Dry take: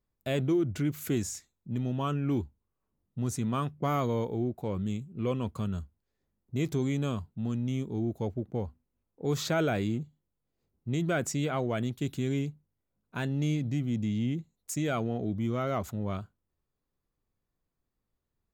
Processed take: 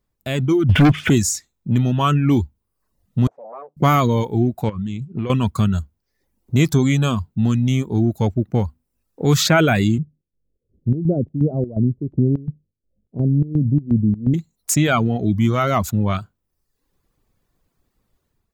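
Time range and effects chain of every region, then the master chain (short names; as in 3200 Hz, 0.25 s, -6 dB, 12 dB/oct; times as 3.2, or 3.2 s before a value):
0.69–1.1 switching spikes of -37 dBFS + Chebyshev low-pass 3500 Hz, order 10 + sample leveller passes 3
3.27–3.77 tube stage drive 38 dB, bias 0.55 + Butterworth band-pass 610 Hz, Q 1.5
4.69–5.3 air absorption 92 m + compressor, threshold -35 dBFS
9.98–14.34 steep low-pass 550 Hz + chopper 2.8 Hz, depth 60%, duty 65%
whole clip: reverb removal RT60 0.71 s; dynamic EQ 470 Hz, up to -7 dB, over -45 dBFS, Q 1; AGC gain up to 9 dB; gain +8 dB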